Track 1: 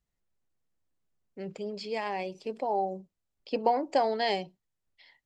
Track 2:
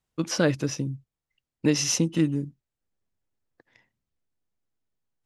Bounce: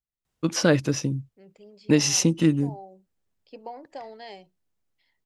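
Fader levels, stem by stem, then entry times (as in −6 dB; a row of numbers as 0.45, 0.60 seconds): −13.5, +3.0 decibels; 0.00, 0.25 seconds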